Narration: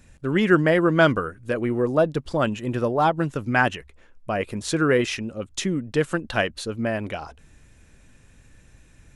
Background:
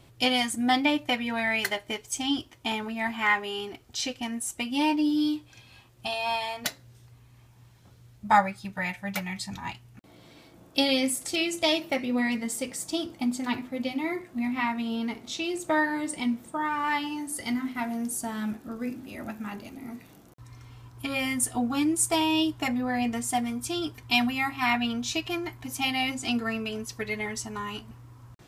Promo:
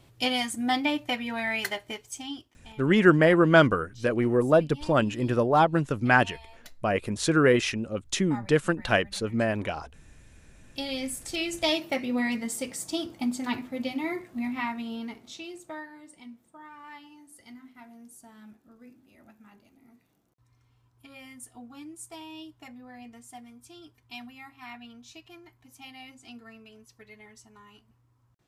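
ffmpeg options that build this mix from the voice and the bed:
-filter_complex "[0:a]adelay=2550,volume=-0.5dB[a];[1:a]volume=16.5dB,afade=t=out:st=1.77:d=0.81:silence=0.133352,afade=t=in:st=10.49:d=1.24:silence=0.112202,afade=t=out:st=14.19:d=1.7:silence=0.133352[b];[a][b]amix=inputs=2:normalize=0"

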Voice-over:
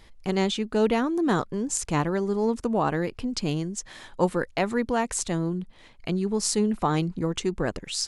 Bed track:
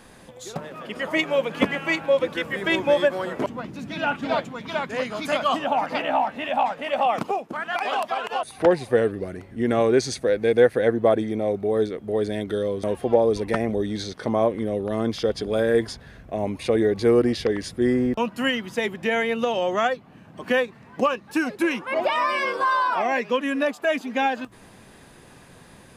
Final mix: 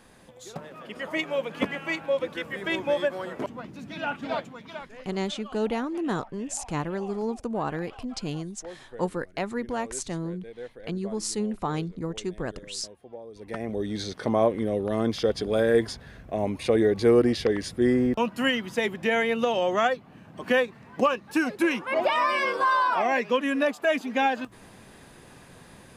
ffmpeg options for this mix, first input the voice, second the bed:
-filter_complex "[0:a]adelay=4800,volume=-5dB[a];[1:a]volume=16.5dB,afade=t=out:st=4.37:d=0.7:silence=0.133352,afade=t=in:st=13.33:d=0.77:silence=0.0749894[b];[a][b]amix=inputs=2:normalize=0"

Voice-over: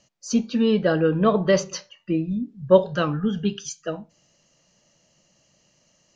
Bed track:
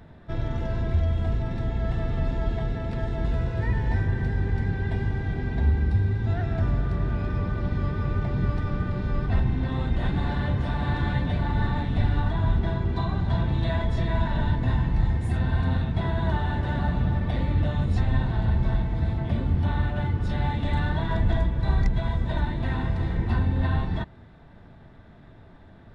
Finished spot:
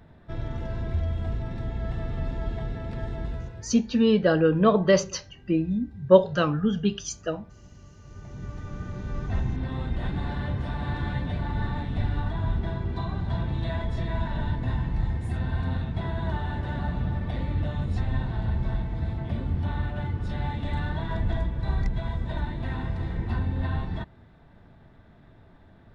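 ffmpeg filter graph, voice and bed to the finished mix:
-filter_complex "[0:a]adelay=3400,volume=-0.5dB[a];[1:a]volume=15dB,afade=t=out:st=3.12:d=0.61:silence=0.112202,afade=t=in:st=8.02:d=1.4:silence=0.112202[b];[a][b]amix=inputs=2:normalize=0"

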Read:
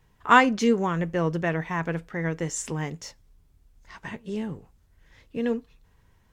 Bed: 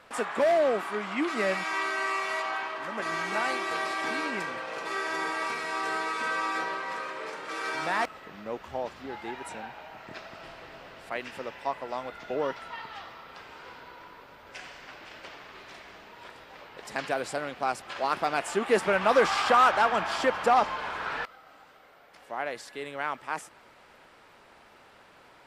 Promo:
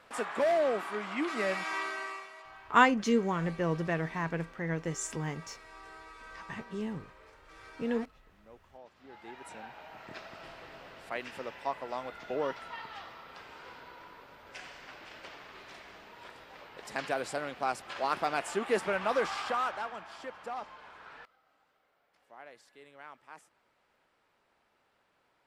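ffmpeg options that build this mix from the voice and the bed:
-filter_complex "[0:a]adelay=2450,volume=-5.5dB[a];[1:a]volume=12.5dB,afade=t=out:st=1.73:d=0.58:silence=0.16788,afade=t=in:st=8.9:d=1.12:silence=0.149624,afade=t=out:st=18.21:d=1.81:silence=0.188365[b];[a][b]amix=inputs=2:normalize=0"

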